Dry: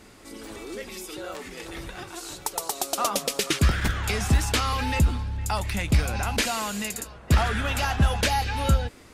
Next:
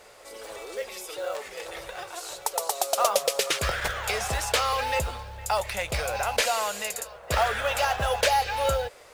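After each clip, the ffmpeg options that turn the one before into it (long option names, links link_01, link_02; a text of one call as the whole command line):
ffmpeg -i in.wav -af "lowshelf=frequency=380:width_type=q:width=3:gain=-11.5,acrusher=bits=6:mode=log:mix=0:aa=0.000001" out.wav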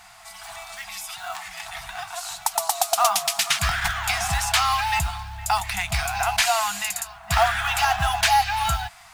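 ffmpeg -i in.wav -af "afftfilt=real='re*(1-between(b*sr/4096,210,650))':imag='im*(1-between(b*sr/4096,210,650))':win_size=4096:overlap=0.75,volume=5dB" out.wav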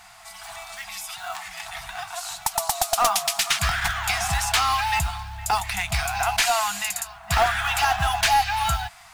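ffmpeg -i in.wav -af "aeval=exprs='clip(val(0),-1,0.158)':channel_layout=same" out.wav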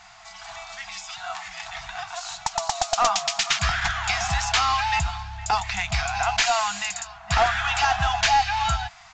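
ffmpeg -i in.wav -af "aresample=16000,aresample=44100" out.wav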